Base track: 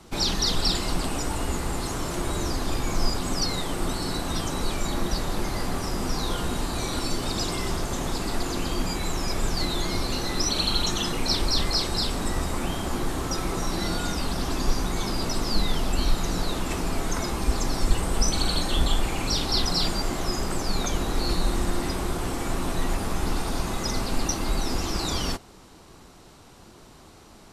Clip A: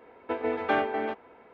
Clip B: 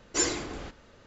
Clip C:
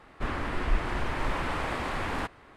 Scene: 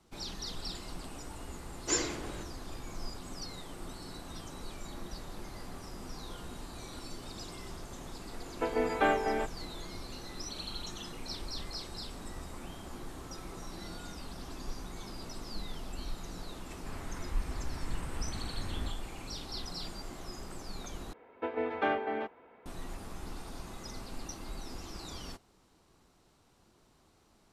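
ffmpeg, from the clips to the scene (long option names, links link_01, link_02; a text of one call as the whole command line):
ffmpeg -i bed.wav -i cue0.wav -i cue1.wav -i cue2.wav -filter_complex "[1:a]asplit=2[link_01][link_02];[0:a]volume=-16.5dB[link_03];[3:a]asubboost=boost=8:cutoff=250[link_04];[link_03]asplit=2[link_05][link_06];[link_05]atrim=end=21.134[link_07];[link_02]atrim=end=1.53,asetpts=PTS-STARTPTS,volume=-4.5dB[link_08];[link_06]atrim=start=22.656[link_09];[2:a]atrim=end=1.06,asetpts=PTS-STARTPTS,volume=-4dB,afade=type=in:duration=0.004:curve=hsin,afade=type=out:start_time=1.056:duration=0.004:curve=hsin,adelay=1730[link_10];[link_01]atrim=end=1.53,asetpts=PTS-STARTPTS,volume=-1.5dB,afade=type=in:duration=0.004:curve=hsin,afade=type=out:start_time=1.526:duration=0.004:curve=hsin,adelay=8320[link_11];[link_04]atrim=end=2.56,asetpts=PTS-STARTPTS,volume=-16dB,afade=type=in:duration=0.004:curve=hsin,afade=type=out:start_time=2.556:duration=0.004:curve=hsin,adelay=16640[link_12];[link_07][link_08]acrossfade=duration=0.004:curve1=hsin:curve2=hsin[link_13];[link_13][link_09]acrossfade=duration=0.004:curve1=hsin:curve2=hsin[link_14];[link_14][link_10][link_11][link_12]amix=inputs=4:normalize=0" out.wav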